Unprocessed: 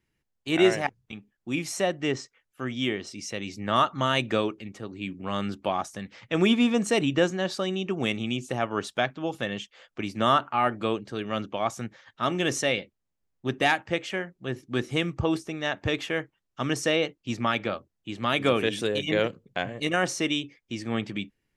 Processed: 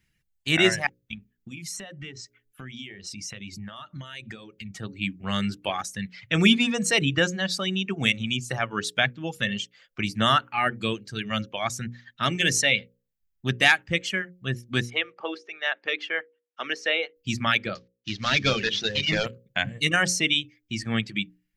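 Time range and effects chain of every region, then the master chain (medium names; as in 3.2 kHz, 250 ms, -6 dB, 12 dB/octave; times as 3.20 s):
1.13–4.77 s: bass shelf 340 Hz +4.5 dB + hum notches 60/120/180/240/300/360/420/480/540/600 Hz + compression, threshold -39 dBFS
14.90–17.16 s: high-pass 380 Hz 24 dB/octave + distance through air 250 m
17.75–19.26 s: CVSD coder 32 kbps + peaking EQ 4.2 kHz +4.5 dB 0.99 oct + hum notches 60/120/180/240/300/360/420/480 Hz
whole clip: reverb removal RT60 1.7 s; high-order bell 560 Hz -10 dB 2.5 oct; hum notches 60/120/180/240/300/360/420/480/540 Hz; trim +8 dB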